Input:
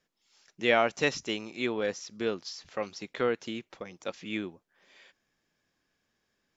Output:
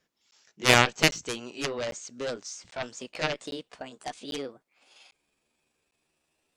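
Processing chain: pitch bend over the whole clip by +8 st starting unshifted; Chebyshev shaper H 7 -13 dB, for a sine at -8.5 dBFS; crackling interface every 0.80 s, samples 512, zero, from 0.31 s; trim +7.5 dB

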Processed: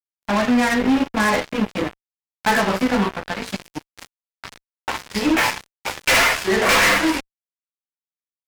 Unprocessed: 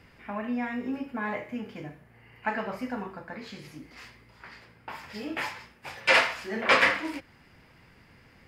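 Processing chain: single-diode clipper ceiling -21.5 dBFS; chorus voices 6, 0.46 Hz, delay 13 ms, depth 3.2 ms; fuzz box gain 38 dB, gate -43 dBFS

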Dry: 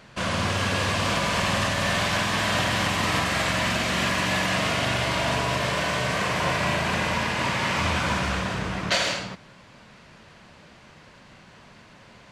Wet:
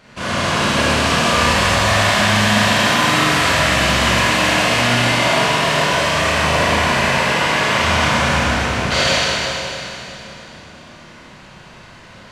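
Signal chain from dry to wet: Schroeder reverb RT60 3.1 s, combs from 26 ms, DRR -9 dB

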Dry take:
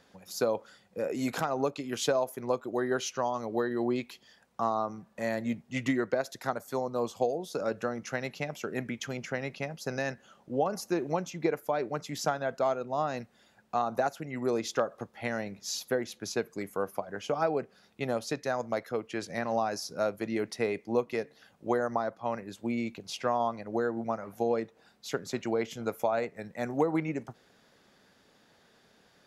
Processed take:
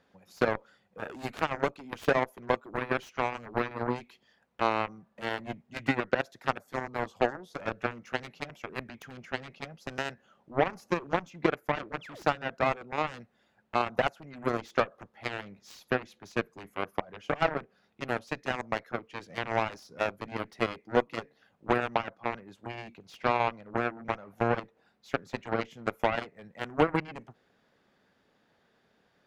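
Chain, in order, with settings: painted sound fall, 12.01–12.23 s, 260–3600 Hz -40 dBFS; Chebyshev shaper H 7 -14 dB, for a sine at -13.5 dBFS; tone controls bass 0 dB, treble -10 dB; trim +3 dB

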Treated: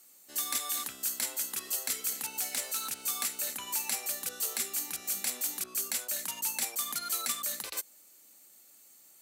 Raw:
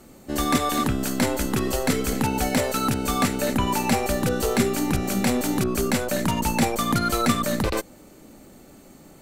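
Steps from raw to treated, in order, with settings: differentiator; 2.41–3.03 s: loudspeaker Doppler distortion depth 0.16 ms; trim -1.5 dB

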